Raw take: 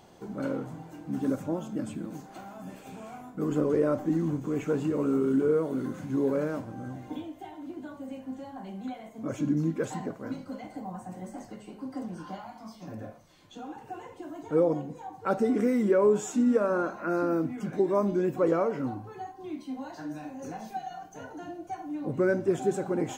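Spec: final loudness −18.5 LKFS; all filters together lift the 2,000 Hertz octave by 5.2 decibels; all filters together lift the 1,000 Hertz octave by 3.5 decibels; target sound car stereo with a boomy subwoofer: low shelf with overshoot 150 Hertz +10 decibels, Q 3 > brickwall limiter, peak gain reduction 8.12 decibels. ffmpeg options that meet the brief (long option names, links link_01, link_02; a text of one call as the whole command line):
ffmpeg -i in.wav -af "lowshelf=frequency=150:width_type=q:width=3:gain=10,equalizer=frequency=1000:width_type=o:gain=3.5,equalizer=frequency=2000:width_type=o:gain=6,volume=14dB,alimiter=limit=-7dB:level=0:latency=1" out.wav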